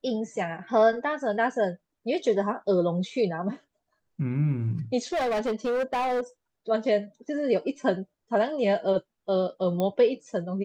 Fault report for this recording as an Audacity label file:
5.120000	6.210000	clipped -23.5 dBFS
9.800000	9.800000	pop -16 dBFS

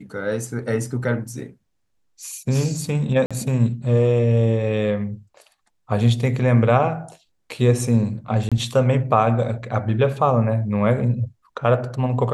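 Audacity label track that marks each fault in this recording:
3.260000	3.310000	gap 46 ms
8.490000	8.520000	gap 26 ms

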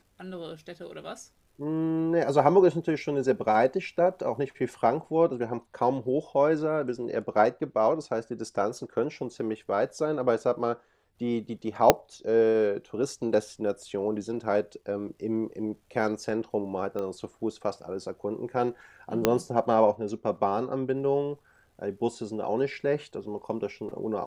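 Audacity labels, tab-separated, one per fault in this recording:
11.900000	11.900000	pop -1 dBFS
16.990000	16.990000	pop -23 dBFS
19.250000	19.250000	pop -6 dBFS

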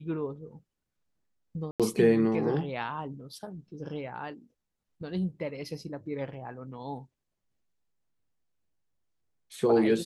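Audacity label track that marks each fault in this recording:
1.710000	1.800000	gap 87 ms

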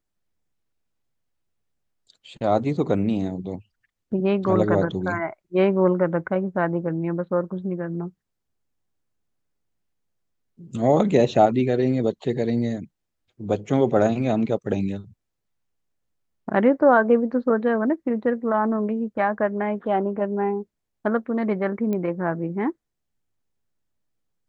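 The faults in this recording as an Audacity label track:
21.930000	21.930000	pop -17 dBFS

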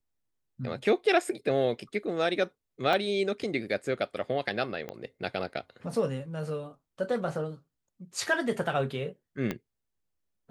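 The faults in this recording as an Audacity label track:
2.930000	2.930000	gap 3.3 ms
4.890000	4.890000	pop -23 dBFS
9.510000	9.510000	pop -17 dBFS

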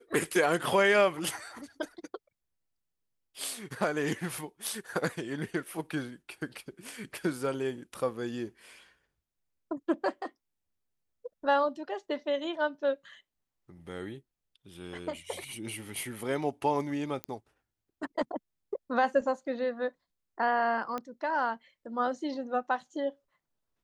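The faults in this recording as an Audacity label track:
17.240000	17.240000	pop -19 dBFS
20.980000	20.980000	pop -22 dBFS

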